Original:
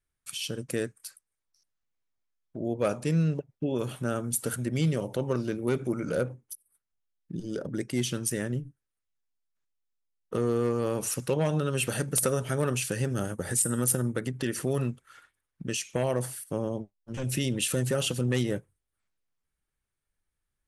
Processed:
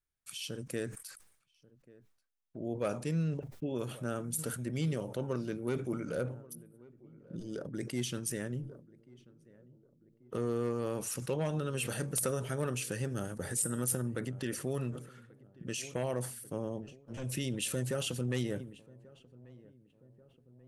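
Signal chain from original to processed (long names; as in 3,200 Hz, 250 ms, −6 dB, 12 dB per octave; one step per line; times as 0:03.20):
feedback echo with a low-pass in the loop 1,137 ms, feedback 61%, low-pass 1,000 Hz, level −21.5 dB
level that may fall only so fast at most 88 dB per second
level −7 dB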